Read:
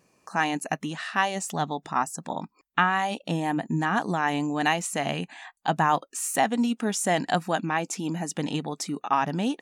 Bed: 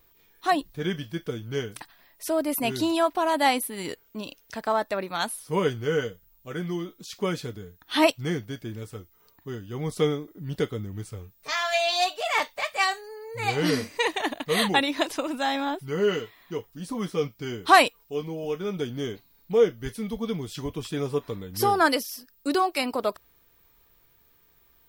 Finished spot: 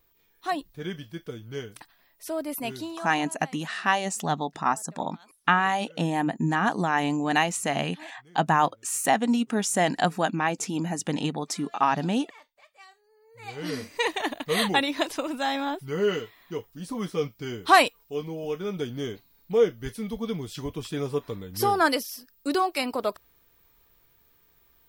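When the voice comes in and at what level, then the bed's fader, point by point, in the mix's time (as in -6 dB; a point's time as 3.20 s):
2.70 s, +1.0 dB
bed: 2.69 s -5.5 dB
3.45 s -27.5 dB
12.91 s -27.5 dB
13.99 s -1 dB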